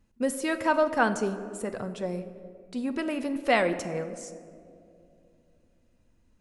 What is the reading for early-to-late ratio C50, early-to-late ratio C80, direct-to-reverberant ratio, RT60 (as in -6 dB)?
11.5 dB, 13.0 dB, 9.0 dB, 2.5 s